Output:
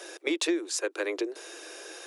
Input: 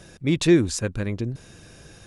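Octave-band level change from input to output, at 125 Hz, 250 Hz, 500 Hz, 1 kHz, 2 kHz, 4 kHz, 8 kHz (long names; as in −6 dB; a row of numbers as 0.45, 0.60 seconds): below −40 dB, −10.5 dB, −5.5 dB, 0.0 dB, −1.0 dB, −2.0 dB, −1.5 dB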